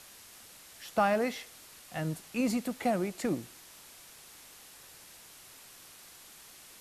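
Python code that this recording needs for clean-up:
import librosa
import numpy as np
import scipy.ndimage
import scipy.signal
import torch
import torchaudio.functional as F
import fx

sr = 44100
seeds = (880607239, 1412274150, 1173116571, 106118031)

y = fx.noise_reduce(x, sr, print_start_s=4.95, print_end_s=5.45, reduce_db=25.0)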